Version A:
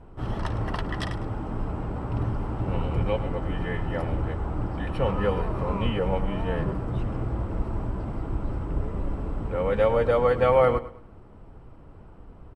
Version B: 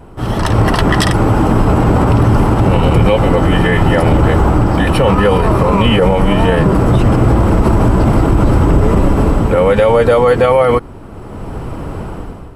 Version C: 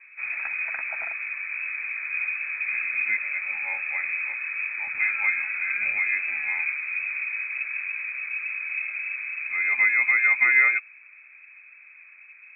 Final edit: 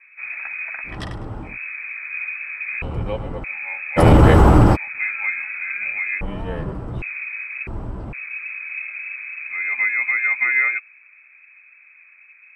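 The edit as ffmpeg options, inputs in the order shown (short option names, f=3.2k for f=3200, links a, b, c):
-filter_complex "[0:a]asplit=4[a][b][c][d];[2:a]asplit=6[e][f][g][h][i][j];[e]atrim=end=0.99[k];[a]atrim=start=0.83:end=1.58[l];[f]atrim=start=1.42:end=2.822[m];[b]atrim=start=2.818:end=3.442[n];[g]atrim=start=3.438:end=4[o];[1:a]atrim=start=3.96:end=4.77[p];[h]atrim=start=4.73:end=6.212[q];[c]atrim=start=6.208:end=7.022[r];[i]atrim=start=7.018:end=7.672[s];[d]atrim=start=7.668:end=8.132[t];[j]atrim=start=8.128[u];[k][l]acrossfade=d=0.16:c1=tri:c2=tri[v];[v][m]acrossfade=d=0.16:c1=tri:c2=tri[w];[w][n]acrossfade=d=0.004:c1=hsin:c2=hsin[x];[x][o]acrossfade=d=0.004:c1=hsin:c2=hsin[y];[y][p]acrossfade=d=0.04:c1=tri:c2=tri[z];[z][q]acrossfade=d=0.04:c1=tri:c2=tri[aa];[aa][r]acrossfade=d=0.004:c1=hsin:c2=hsin[ab];[ab][s]acrossfade=d=0.004:c1=hsin:c2=hsin[ac];[ac][t]acrossfade=d=0.004:c1=hsin:c2=hsin[ad];[ad][u]acrossfade=d=0.004:c1=hsin:c2=hsin"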